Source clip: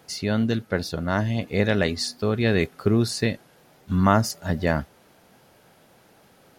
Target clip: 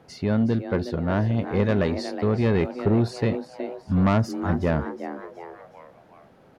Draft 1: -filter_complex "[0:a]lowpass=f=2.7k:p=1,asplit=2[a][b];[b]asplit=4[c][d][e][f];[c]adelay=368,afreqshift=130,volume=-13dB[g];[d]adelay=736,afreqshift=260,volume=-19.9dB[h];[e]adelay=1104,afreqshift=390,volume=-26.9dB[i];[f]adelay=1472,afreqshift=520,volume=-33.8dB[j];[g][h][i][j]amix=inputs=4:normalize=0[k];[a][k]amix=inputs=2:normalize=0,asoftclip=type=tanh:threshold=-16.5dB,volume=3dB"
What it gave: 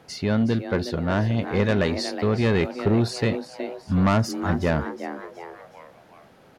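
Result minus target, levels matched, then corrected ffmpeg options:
2000 Hz band +3.5 dB
-filter_complex "[0:a]lowpass=f=1k:p=1,asplit=2[a][b];[b]asplit=4[c][d][e][f];[c]adelay=368,afreqshift=130,volume=-13dB[g];[d]adelay=736,afreqshift=260,volume=-19.9dB[h];[e]adelay=1104,afreqshift=390,volume=-26.9dB[i];[f]adelay=1472,afreqshift=520,volume=-33.8dB[j];[g][h][i][j]amix=inputs=4:normalize=0[k];[a][k]amix=inputs=2:normalize=0,asoftclip=type=tanh:threshold=-16.5dB,volume=3dB"

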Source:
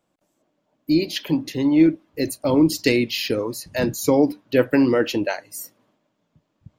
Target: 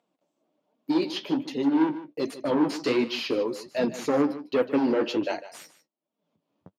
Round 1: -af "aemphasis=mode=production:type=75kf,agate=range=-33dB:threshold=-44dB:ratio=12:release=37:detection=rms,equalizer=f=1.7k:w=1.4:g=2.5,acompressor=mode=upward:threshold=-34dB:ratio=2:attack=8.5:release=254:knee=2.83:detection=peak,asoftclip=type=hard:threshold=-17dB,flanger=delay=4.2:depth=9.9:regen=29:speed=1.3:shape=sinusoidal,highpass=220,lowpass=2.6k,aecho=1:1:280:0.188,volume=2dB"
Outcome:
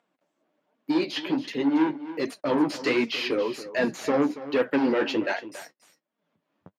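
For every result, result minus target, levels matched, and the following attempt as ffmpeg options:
echo 0.129 s late; 2000 Hz band +5.5 dB
-af "aemphasis=mode=production:type=75kf,agate=range=-33dB:threshold=-44dB:ratio=12:release=37:detection=rms,equalizer=f=1.7k:w=1.4:g=2.5,acompressor=mode=upward:threshold=-34dB:ratio=2:attack=8.5:release=254:knee=2.83:detection=peak,asoftclip=type=hard:threshold=-17dB,flanger=delay=4.2:depth=9.9:regen=29:speed=1.3:shape=sinusoidal,highpass=220,lowpass=2.6k,aecho=1:1:151:0.188,volume=2dB"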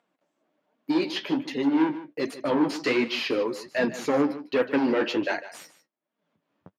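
2000 Hz band +5.5 dB
-af "aemphasis=mode=production:type=75kf,agate=range=-33dB:threshold=-44dB:ratio=12:release=37:detection=rms,equalizer=f=1.7k:w=1.4:g=-9,acompressor=mode=upward:threshold=-34dB:ratio=2:attack=8.5:release=254:knee=2.83:detection=peak,asoftclip=type=hard:threshold=-17dB,flanger=delay=4.2:depth=9.9:regen=29:speed=1.3:shape=sinusoidal,highpass=220,lowpass=2.6k,aecho=1:1:151:0.188,volume=2dB"

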